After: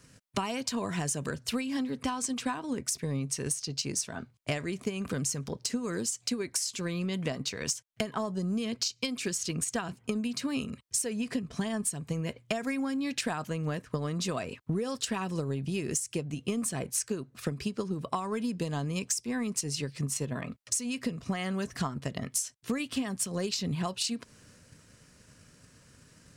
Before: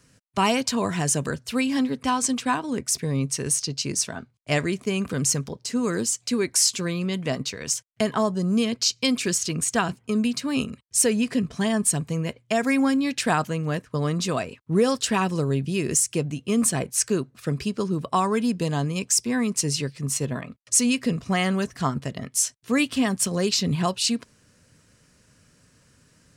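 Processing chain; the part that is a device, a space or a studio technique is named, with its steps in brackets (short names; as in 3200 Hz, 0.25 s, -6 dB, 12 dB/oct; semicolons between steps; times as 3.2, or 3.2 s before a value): drum-bus smash (transient shaper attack +8 dB, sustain +3 dB; compressor 6:1, threshold -29 dBFS, peak gain reduction 18 dB; soft clip -17 dBFS, distortion -26 dB)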